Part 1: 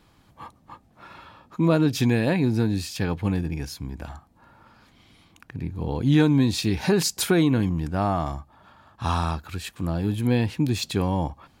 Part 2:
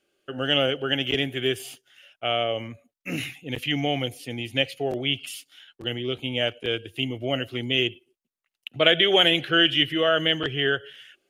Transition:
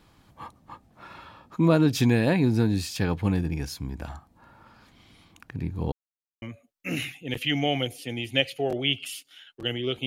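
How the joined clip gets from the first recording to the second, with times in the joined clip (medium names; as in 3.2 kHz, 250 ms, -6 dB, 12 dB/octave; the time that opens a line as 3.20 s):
part 1
5.92–6.42 s: mute
6.42 s: go over to part 2 from 2.63 s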